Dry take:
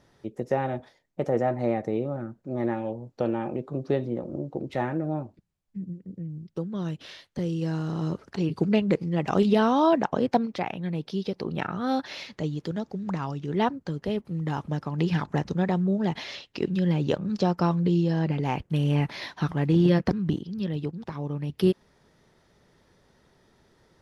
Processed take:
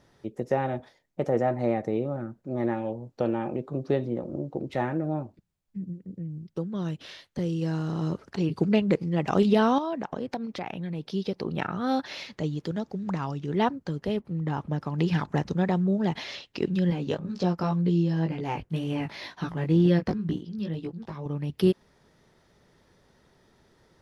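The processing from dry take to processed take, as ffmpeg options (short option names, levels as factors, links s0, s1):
-filter_complex "[0:a]asettb=1/sr,asplit=3[s0][s1][s2];[s0]atrim=end=9.784[s3];[s1]atrim=start=9.78:end=11.04,asetpts=PTS-STARTPTS,afade=t=in:d=0.004:c=qsin,afade=t=out:st=1.256:d=0.004:c=qsin,acompressor=threshold=0.0355:ratio=4:attack=3.2:release=140:knee=1:detection=peak[s4];[s2]atrim=start=11.036[s5];[s3][s4]acrossfade=d=0.004:c1=hsin:c2=qsin[s6];[s6][s5]acrossfade=d=0.004:c1=qsin:c2=hsin,asettb=1/sr,asplit=3[s7][s8][s9];[s7]atrim=end=14.194[s10];[s8]atrim=start=14.19:end=14.8,asetpts=PTS-STARTPTS,afade=t=in:d=0.004:c=qsin,afade=t=out:st=0.606:d=0.004:c=qsin,highshelf=f=3600:g=-9.5[s11];[s9]atrim=start=14.796[s12];[s10][s11]acrossfade=d=0.004:c1=hsin:c2=qsin[s13];[s13][s12]acrossfade=d=0.004:c1=qsin:c2=hsin,asettb=1/sr,asplit=3[s14][s15][s16];[s14]atrim=end=16.904[s17];[s15]atrim=start=16.9:end=21.26,asetpts=PTS-STARTPTS,afade=t=in:d=0.004:c=qsin,afade=t=out:st=4.356:d=0.004:c=qsin,flanger=delay=16.5:depth=2.7:speed=2[s18];[s16]atrim=start=21.256[s19];[s17][s18]acrossfade=d=0.004:c1=hsin:c2=qsin[s20];[s20][s19]acrossfade=d=0.004:c1=qsin:c2=hsin"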